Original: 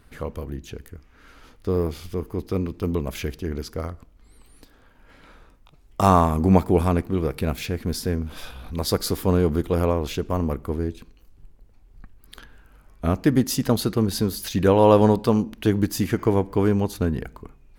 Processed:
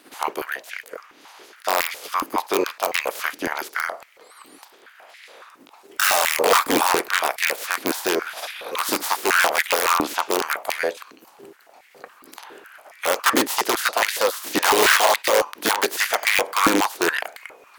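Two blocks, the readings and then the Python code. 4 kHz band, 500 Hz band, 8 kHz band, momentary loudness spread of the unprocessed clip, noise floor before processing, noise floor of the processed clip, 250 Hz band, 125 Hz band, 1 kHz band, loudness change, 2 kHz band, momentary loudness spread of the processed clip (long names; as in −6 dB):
+10.5 dB, −1.0 dB, +11.0 dB, 15 LU, −54 dBFS, −52 dBFS, −7.0 dB, −24.0 dB, +5.5 dB, +2.0 dB, +17.0 dB, 13 LU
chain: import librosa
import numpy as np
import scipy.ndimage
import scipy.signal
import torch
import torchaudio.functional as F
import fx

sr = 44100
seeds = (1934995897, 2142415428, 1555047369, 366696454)

y = fx.spec_clip(x, sr, under_db=28)
y = (np.mod(10.0 ** (12.0 / 20.0) * y + 1.0, 2.0) - 1.0) / 10.0 ** (12.0 / 20.0)
y = fx.filter_held_highpass(y, sr, hz=7.2, low_hz=290.0, high_hz=2000.0)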